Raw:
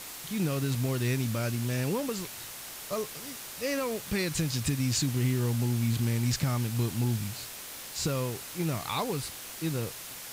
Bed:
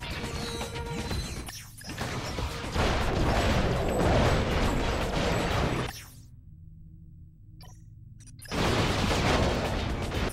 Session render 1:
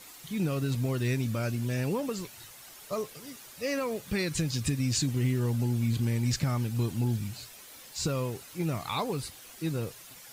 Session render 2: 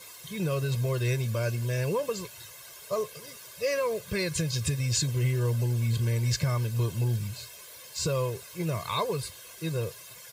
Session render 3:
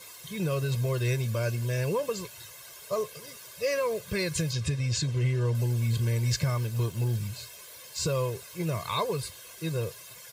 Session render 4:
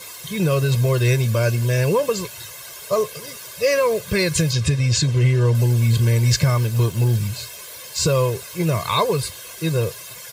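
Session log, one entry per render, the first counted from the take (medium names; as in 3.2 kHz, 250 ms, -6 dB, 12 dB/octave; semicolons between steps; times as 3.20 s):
noise reduction 10 dB, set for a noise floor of -43 dBFS
high-pass 70 Hz; comb 1.9 ms, depth 82%
4.53–5.55 s: distance through air 63 m; 6.50–7.16 s: companding laws mixed up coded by A
trim +10 dB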